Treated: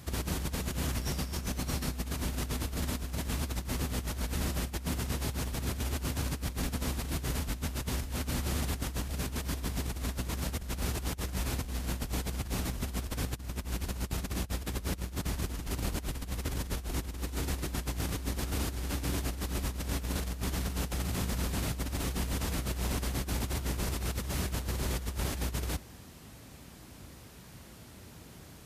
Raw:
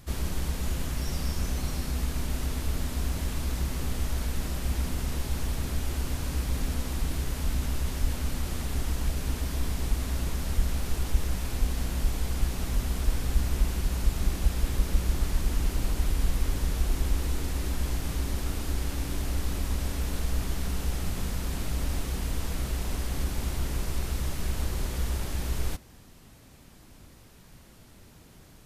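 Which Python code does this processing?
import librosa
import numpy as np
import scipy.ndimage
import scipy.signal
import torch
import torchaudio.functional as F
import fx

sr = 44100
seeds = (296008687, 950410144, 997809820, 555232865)

y = scipy.signal.sosfilt(scipy.signal.butter(4, 49.0, 'highpass', fs=sr, output='sos'), x)
y = fx.over_compress(y, sr, threshold_db=-33.0, ratio=-0.5)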